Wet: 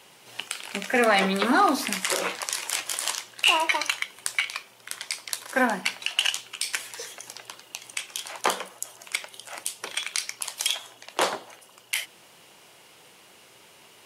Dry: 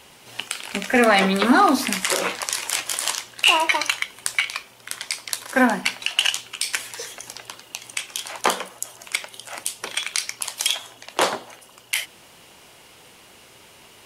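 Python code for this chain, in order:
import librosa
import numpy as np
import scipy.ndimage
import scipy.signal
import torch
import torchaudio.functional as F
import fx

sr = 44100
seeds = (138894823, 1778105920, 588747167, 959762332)

y = scipy.signal.sosfilt(scipy.signal.butter(2, 130.0, 'highpass', fs=sr, output='sos'), x)
y = fx.peak_eq(y, sr, hz=250.0, db=-4.5, octaves=0.29)
y = y * librosa.db_to_amplitude(-4.0)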